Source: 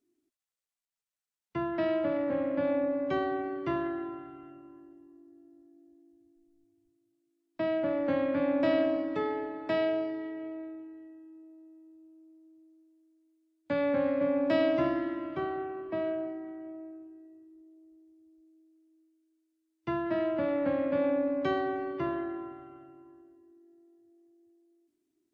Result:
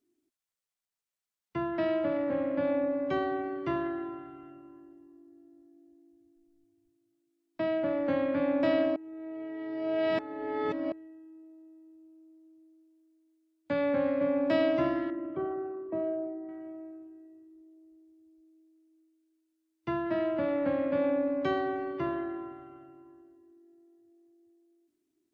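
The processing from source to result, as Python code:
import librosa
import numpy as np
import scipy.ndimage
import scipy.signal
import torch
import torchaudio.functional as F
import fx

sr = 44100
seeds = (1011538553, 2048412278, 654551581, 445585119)

y = fx.envelope_sharpen(x, sr, power=1.5, at=(15.1, 16.49))
y = fx.edit(y, sr, fx.reverse_span(start_s=8.96, length_s=1.96), tone=tone)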